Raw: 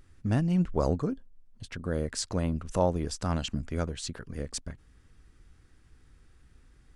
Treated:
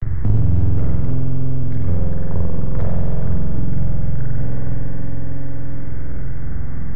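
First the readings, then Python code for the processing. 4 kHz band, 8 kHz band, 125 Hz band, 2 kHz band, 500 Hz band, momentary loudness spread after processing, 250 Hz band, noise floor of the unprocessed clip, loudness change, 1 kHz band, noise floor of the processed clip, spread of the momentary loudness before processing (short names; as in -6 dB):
under -15 dB, under -30 dB, +13.5 dB, +2.0 dB, -0.5 dB, 10 LU, +5.5 dB, -60 dBFS, +7.5 dB, -2.0 dB, -14 dBFS, 12 LU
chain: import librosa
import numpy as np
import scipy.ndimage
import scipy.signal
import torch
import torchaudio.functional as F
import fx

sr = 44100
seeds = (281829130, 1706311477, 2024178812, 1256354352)

y = fx.octave_divider(x, sr, octaves=1, level_db=-4.0)
y = scipy.signal.sosfilt(scipy.signal.cheby1(10, 1.0, 2200.0, 'lowpass', fs=sr, output='sos'), y)
y = fx.env_lowpass_down(y, sr, base_hz=550.0, full_db=-26.0)
y = fx.peak_eq(y, sr, hz=380.0, db=2.0, octaves=2.0)
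y = 10.0 ** (-22.0 / 20.0) * (np.abs((y / 10.0 ** (-22.0 / 20.0) + 3.0) % 4.0 - 2.0) - 1.0)
y = fx.low_shelf_res(y, sr, hz=160.0, db=9.5, q=3.0)
y = np.maximum(y, 0.0)
y = fx.echo_feedback(y, sr, ms=315, feedback_pct=55, wet_db=-11.0)
y = fx.rev_spring(y, sr, rt60_s=2.4, pass_ms=(46,), chirp_ms=75, drr_db=-5.5)
y = fx.band_squash(y, sr, depth_pct=100)
y = F.gain(torch.from_numpy(y), -1.0).numpy()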